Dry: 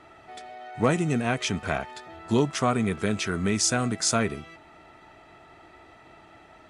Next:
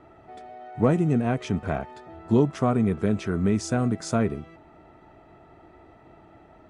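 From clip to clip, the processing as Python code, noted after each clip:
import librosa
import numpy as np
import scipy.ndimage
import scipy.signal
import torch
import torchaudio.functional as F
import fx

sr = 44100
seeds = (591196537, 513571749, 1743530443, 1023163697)

y = fx.tilt_shelf(x, sr, db=8.5, hz=1300.0)
y = F.gain(torch.from_numpy(y), -4.5).numpy()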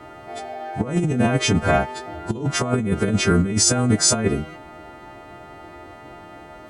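y = fx.freq_snap(x, sr, grid_st=2)
y = fx.over_compress(y, sr, threshold_db=-26.0, ratio=-0.5)
y = F.gain(torch.from_numpy(y), 8.0).numpy()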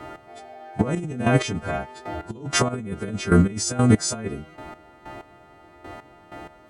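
y = fx.step_gate(x, sr, bpm=95, pattern='x....x..', floor_db=-12.0, edge_ms=4.5)
y = F.gain(torch.from_numpy(y), 2.5).numpy()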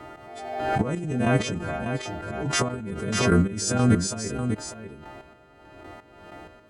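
y = x + 10.0 ** (-7.5 / 20.0) * np.pad(x, (int(595 * sr / 1000.0), 0))[:len(x)]
y = fx.pre_swell(y, sr, db_per_s=43.0)
y = F.gain(torch.from_numpy(y), -4.0).numpy()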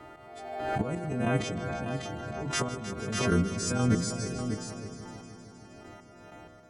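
y = fx.echo_heads(x, sr, ms=156, heads='first and second', feedback_pct=72, wet_db=-15.0)
y = F.gain(torch.from_numpy(y), -6.0).numpy()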